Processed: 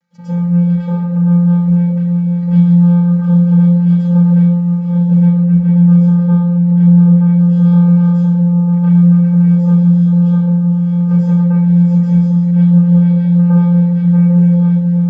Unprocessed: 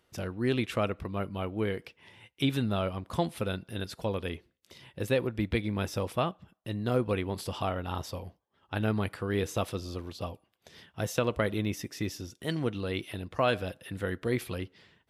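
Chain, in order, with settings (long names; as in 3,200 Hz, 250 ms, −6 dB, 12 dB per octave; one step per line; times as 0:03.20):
downward compressor 10 to 1, threshold −33 dBFS, peak gain reduction 12 dB
channel vocoder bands 8, square 174 Hz
echo whose low-pass opens from repeat to repeat 799 ms, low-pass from 750 Hz, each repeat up 1 octave, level −6 dB
log-companded quantiser 8 bits
0:05.05–0:07.45: high-shelf EQ 6,000 Hz −7 dB
convolution reverb RT60 0.70 s, pre-delay 96 ms, DRR −12 dB
dynamic equaliser 4,600 Hz, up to −7 dB, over −48 dBFS, Q 0.97
level −1 dB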